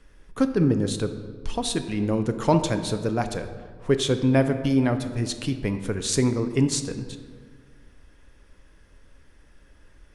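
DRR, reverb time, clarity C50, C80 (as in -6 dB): 8.0 dB, 1.7 s, 10.0 dB, 11.0 dB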